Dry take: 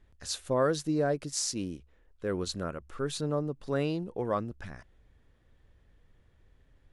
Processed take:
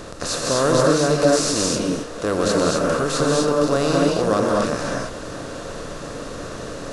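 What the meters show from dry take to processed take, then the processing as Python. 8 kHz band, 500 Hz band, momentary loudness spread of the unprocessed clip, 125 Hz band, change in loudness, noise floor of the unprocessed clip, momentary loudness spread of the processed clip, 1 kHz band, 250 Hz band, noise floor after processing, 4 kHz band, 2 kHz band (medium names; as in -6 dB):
+13.0 dB, +13.5 dB, 13 LU, +10.5 dB, +12.5 dB, -65 dBFS, 15 LU, +14.5 dB, +13.0 dB, -33 dBFS, +13.5 dB, +15.5 dB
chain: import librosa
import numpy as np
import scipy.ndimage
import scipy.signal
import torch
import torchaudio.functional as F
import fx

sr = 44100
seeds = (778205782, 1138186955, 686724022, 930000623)

y = fx.bin_compress(x, sr, power=0.4)
y = fx.rev_gated(y, sr, seeds[0], gate_ms=280, shape='rising', drr_db=-2.0)
y = y * 10.0 ** (4.0 / 20.0)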